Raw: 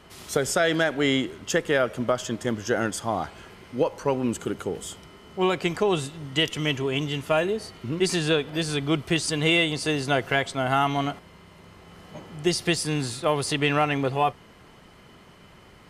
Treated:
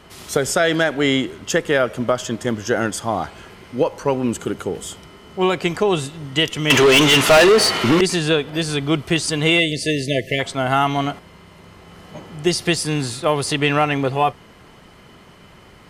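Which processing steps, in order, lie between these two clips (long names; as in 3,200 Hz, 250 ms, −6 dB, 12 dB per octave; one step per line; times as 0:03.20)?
0:06.70–0:08.01: mid-hump overdrive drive 30 dB, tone 7,400 Hz, clips at −9 dBFS
0:09.59–0:10.40: time-frequency box erased 680–1,700 Hz
level +5 dB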